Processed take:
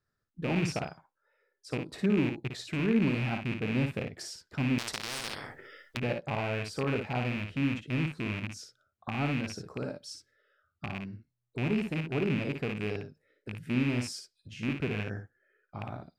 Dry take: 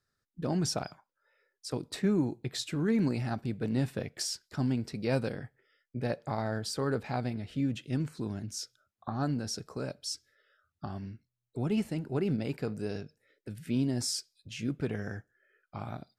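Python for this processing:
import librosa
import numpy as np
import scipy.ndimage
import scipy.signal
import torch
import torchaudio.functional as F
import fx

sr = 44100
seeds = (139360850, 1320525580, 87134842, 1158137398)

p1 = fx.rattle_buzz(x, sr, strikes_db=-34.0, level_db=-22.0)
p2 = fx.high_shelf(p1, sr, hz=2900.0, db=-10.5)
p3 = p2 + fx.room_early_taps(p2, sr, ms=(57, 69), db=(-6.0, -17.5), dry=0)
y = fx.spectral_comp(p3, sr, ratio=10.0, at=(4.78, 5.97))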